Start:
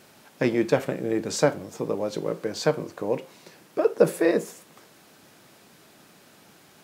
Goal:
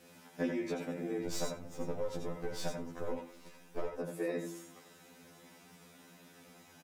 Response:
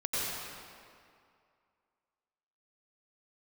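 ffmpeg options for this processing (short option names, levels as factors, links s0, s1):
-filter_complex "[0:a]asettb=1/sr,asplit=3[s0][s1][s2];[s0]atrim=end=1.264[s3];[s1]atrim=start=1.26:end=3.95,asetpts=PTS-STARTPTS,afade=t=in:d=0.004:c=qsin,afade=t=out:st=2.686:d=0.004:c=qsin,aeval=exprs='if(lt(val(0),0),0.251*val(0),val(0))':c=same[s4];[s2]atrim=start=3.946[s5];[s3][s4]acrossfade=d=0.004:c1=hsin:c2=qsin[s6];[s6][s5]acrossfade=d=0.004:c1=qsin:c2=hsin,lowshelf=f=390:g=4.5,bandreject=f=4300:w=20,aecho=1:1:4:0.33,bandreject=f=112.8:t=h:w=4,bandreject=f=225.6:t=h:w=4,bandreject=f=338.4:t=h:w=4,acompressor=threshold=0.0562:ratio=12,aecho=1:1:87:0.119[s7];[1:a]atrim=start_sample=2205,atrim=end_sample=3969[s8];[s7][s8]afir=irnorm=-1:irlink=0,afftfilt=real='re*2*eq(mod(b,4),0)':imag='im*2*eq(mod(b,4),0)':win_size=2048:overlap=0.75,volume=0.708"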